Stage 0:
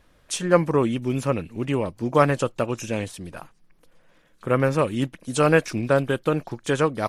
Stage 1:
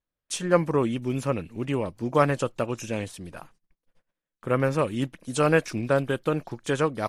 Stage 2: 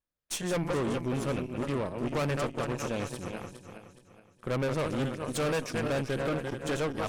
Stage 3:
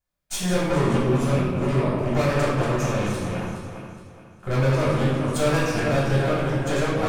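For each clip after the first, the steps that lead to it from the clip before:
noise gate −51 dBFS, range −28 dB; level −3 dB
feedback delay that plays each chunk backwards 210 ms, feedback 60%, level −8 dB; tube saturation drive 28 dB, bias 0.8; level +1.5 dB
convolution reverb RT60 1.3 s, pre-delay 3 ms, DRR −6.5 dB; level −3 dB

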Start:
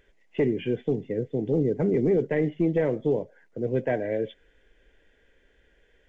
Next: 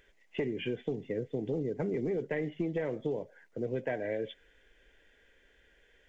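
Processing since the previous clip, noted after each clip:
tilt shelving filter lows −3.5 dB, about 780 Hz
downward compressor, threshold −28 dBFS, peak gain reduction 7.5 dB
level −1.5 dB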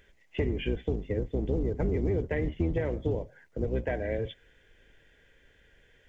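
sub-octave generator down 2 octaves, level +4 dB
level +2 dB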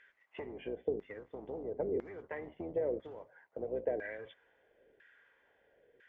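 downward compressor 2 to 1, threshold −32 dBFS, peak gain reduction 5 dB
auto-filter band-pass saw down 1 Hz 420–1,700 Hz
level +4.5 dB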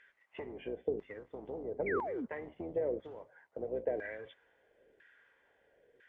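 sound drawn into the spectrogram fall, 0:01.86–0:02.26, 210–2,400 Hz −38 dBFS
AAC 48 kbit/s 22,050 Hz

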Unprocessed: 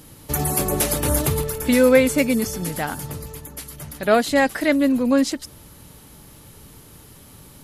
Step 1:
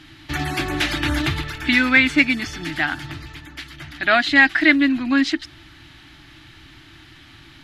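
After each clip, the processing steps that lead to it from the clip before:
drawn EQ curve 140 Hz 0 dB, 200 Hz −10 dB, 330 Hz +9 dB, 480 Hz −23 dB, 680 Hz +1 dB, 1,000 Hz −1 dB, 1,700 Hz +13 dB, 2,400 Hz +11 dB, 3,700 Hz +10 dB, 11,000 Hz −20 dB
level −1.5 dB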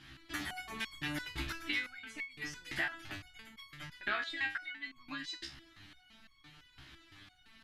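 harmonic and percussive parts rebalanced harmonic −13 dB
downward compressor 5 to 1, threshold −28 dBFS, peak gain reduction 15 dB
step-sequenced resonator 5.9 Hz 67–1,100 Hz
level +4 dB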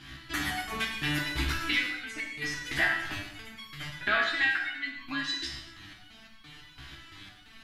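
reverb whose tail is shaped and stops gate 290 ms falling, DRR 0.5 dB
level +6.5 dB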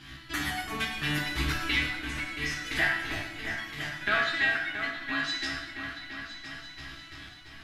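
echo whose low-pass opens from repeat to repeat 338 ms, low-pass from 750 Hz, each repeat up 2 octaves, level −6 dB

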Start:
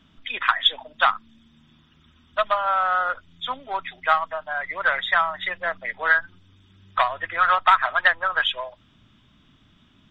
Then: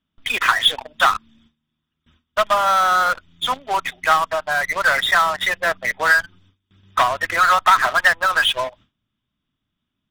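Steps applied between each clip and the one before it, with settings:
noise gate with hold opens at −45 dBFS
in parallel at −7.5 dB: fuzz pedal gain 32 dB, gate −37 dBFS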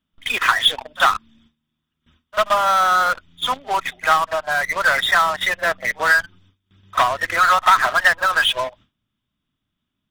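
echo ahead of the sound 43 ms −21 dB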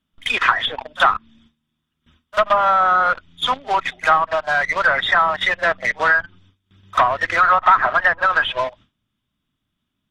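treble cut that deepens with the level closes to 1,600 Hz, closed at −13 dBFS
level +2 dB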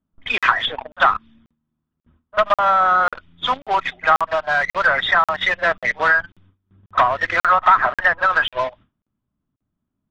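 low-pass that shuts in the quiet parts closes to 920 Hz, open at −13 dBFS
regular buffer underruns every 0.54 s, samples 2,048, zero, from 0:00.38

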